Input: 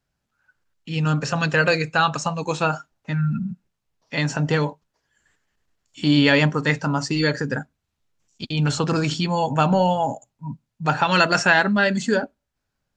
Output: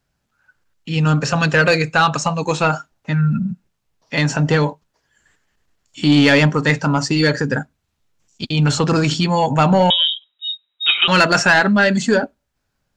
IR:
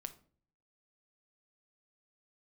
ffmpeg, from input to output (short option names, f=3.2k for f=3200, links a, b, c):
-filter_complex "[0:a]asoftclip=type=tanh:threshold=-10.5dB,asettb=1/sr,asplit=3[a][b][c];[a]atrim=end=9.904[d];[b]atrim=start=9.9:end=11.08,asetpts=PTS-STARTPTS,afade=t=in:d=0.004:c=qsin,afade=t=out:st=1.176:d=0.004:c=qsin,lowpass=f=3.3k:t=q:w=0.5098,lowpass=f=3.3k:t=q:w=0.6013,lowpass=f=3.3k:t=q:w=0.9,lowpass=f=3.3k:t=q:w=2.563,afreqshift=-3900[e];[c]atrim=start=11.076[f];[d][e]acrossfade=d=0.004:c1=hsin:c2=qsin[g];[g][f]acrossfade=d=0.004:c1=qsin:c2=hsin,volume=6dB"